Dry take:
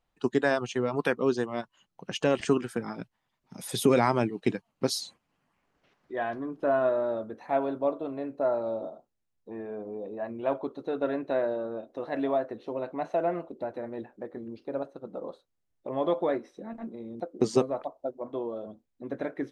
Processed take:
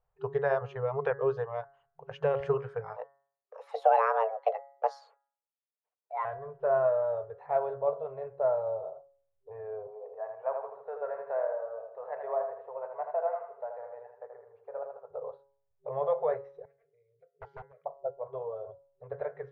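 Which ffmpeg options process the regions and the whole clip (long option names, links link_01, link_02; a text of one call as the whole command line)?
ffmpeg -i in.wav -filter_complex "[0:a]asettb=1/sr,asplit=3[link_01][link_02][link_03];[link_01]atrim=end=2.964[link_04];[link_02]atrim=start=2.96:end=6.25,asetpts=PTS-STARTPTS,afade=type=in:duration=0.004:curve=qsin,afade=type=out:start_time=3.286:duration=0.004:curve=qsin,agate=range=-33dB:threshold=-54dB:ratio=3:release=100:detection=peak,bandreject=frequency=210:width=5.8,afreqshift=330[link_05];[link_03]atrim=start=6.246[link_06];[link_04][link_05]acrossfade=duration=0.004:curve1=hsin:curve2=qsin[link_07];[link_07][link_06]acrossfade=duration=0.004:curve1=qsin:curve2=hsin,asettb=1/sr,asplit=3[link_08][link_09][link_10];[link_08]atrim=end=9.874[link_11];[link_09]atrim=start=9.87:end=15.11,asetpts=PTS-STARTPTS,afade=type=in:duration=0.004:curve=qsin,afade=type=out:start_time=5.236:duration=0.004:curve=qsin,acrossover=split=520 2100:gain=0.0708 1 0.1[link_12][link_13][link_14];[link_12][link_13][link_14]amix=inputs=3:normalize=0,aecho=1:1:80|160|240|320|400:0.501|0.21|0.0884|0.0371|0.0156,atrim=end_sample=231084[link_15];[link_10]atrim=start=15.106[link_16];[link_11][link_15]acrossfade=duration=0.004:curve1=hsin:curve2=qsin[link_17];[link_17][link_16]acrossfade=duration=0.004:curve1=qsin:curve2=hsin,asettb=1/sr,asplit=3[link_18][link_19][link_20];[link_18]atrim=end=16.654[link_21];[link_19]atrim=start=16.65:end=17.86,asetpts=PTS-STARTPTS,afade=type=in:duration=0.004:curve=qsin,afade=type=out:start_time=1.206:duration=0.004:curve=qsin,asplit=3[link_22][link_23][link_24];[link_22]bandpass=frequency=270:width_type=q:width=8,volume=0dB[link_25];[link_23]bandpass=frequency=2290:width_type=q:width=8,volume=-6dB[link_26];[link_24]bandpass=frequency=3010:width_type=q:width=8,volume=-9dB[link_27];[link_25][link_26][link_27]amix=inputs=3:normalize=0,aeval=exprs='0.0168*(abs(mod(val(0)/0.0168+3,4)-2)-1)':channel_layout=same[link_28];[link_20]atrim=start=17.856[link_29];[link_21][link_28]acrossfade=duration=0.004:curve1=hsin:curve2=qsin[link_30];[link_30][link_29]acrossfade=duration=0.004:curve1=qsin:curve2=hsin,lowpass=1200,bandreject=frequency=138.8:width_type=h:width=4,bandreject=frequency=277.6:width_type=h:width=4,bandreject=frequency=416.4:width_type=h:width=4,bandreject=frequency=555.2:width_type=h:width=4,bandreject=frequency=694:width_type=h:width=4,bandreject=frequency=832.8:width_type=h:width=4,bandreject=frequency=971.6:width_type=h:width=4,bandreject=frequency=1110.4:width_type=h:width=4,bandreject=frequency=1249.2:width_type=h:width=4,bandreject=frequency=1388:width_type=h:width=4,bandreject=frequency=1526.8:width_type=h:width=4,bandreject=frequency=1665.6:width_type=h:width=4,bandreject=frequency=1804.4:width_type=h:width=4,bandreject=frequency=1943.2:width_type=h:width=4,bandreject=frequency=2082:width_type=h:width=4,afftfilt=real='re*(1-between(b*sr/4096,160,390))':imag='im*(1-between(b*sr/4096,160,390))':win_size=4096:overlap=0.75" out.wav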